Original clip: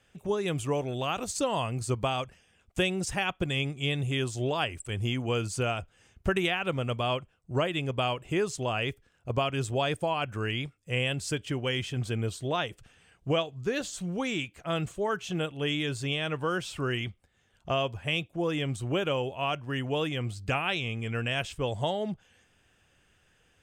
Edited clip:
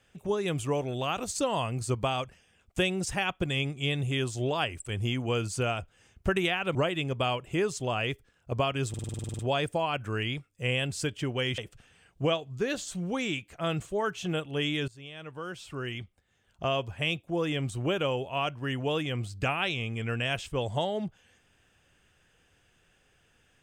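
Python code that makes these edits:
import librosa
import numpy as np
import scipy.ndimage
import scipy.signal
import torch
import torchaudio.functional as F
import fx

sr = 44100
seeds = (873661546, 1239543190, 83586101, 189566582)

y = fx.edit(x, sr, fx.cut(start_s=6.75, length_s=0.78),
    fx.stutter(start_s=9.67, slice_s=0.05, count=11),
    fx.cut(start_s=11.86, length_s=0.78),
    fx.fade_in_from(start_s=15.94, length_s=1.97, floor_db=-19.5), tone=tone)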